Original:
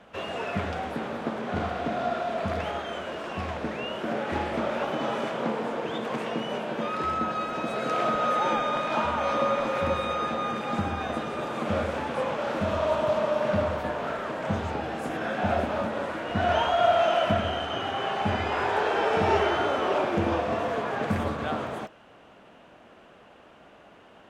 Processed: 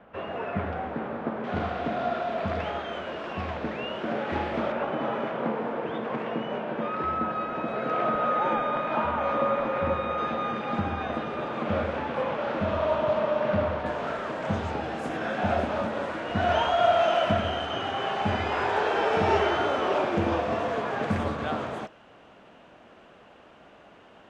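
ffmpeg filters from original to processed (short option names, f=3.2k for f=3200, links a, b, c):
-af "asetnsamples=n=441:p=0,asendcmd='1.44 lowpass f 4300;4.72 lowpass f 2300;10.18 lowpass f 3500;13.86 lowpass f 8200',lowpass=1.9k"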